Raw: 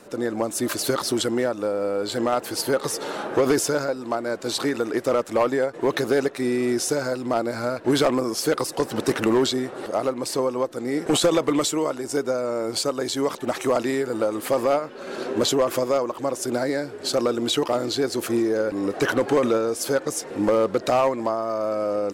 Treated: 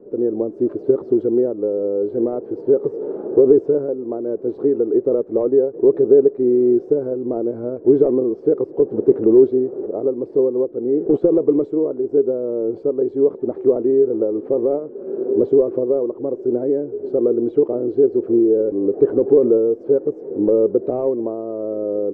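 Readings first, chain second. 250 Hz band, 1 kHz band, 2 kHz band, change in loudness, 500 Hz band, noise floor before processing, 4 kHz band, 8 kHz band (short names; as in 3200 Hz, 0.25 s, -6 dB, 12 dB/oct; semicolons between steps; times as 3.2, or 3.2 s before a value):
+5.5 dB, under -10 dB, under -20 dB, +5.5 dB, +7.0 dB, -38 dBFS, under -40 dB, under -40 dB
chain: synth low-pass 410 Hz, resonance Q 4.6; gain -1.5 dB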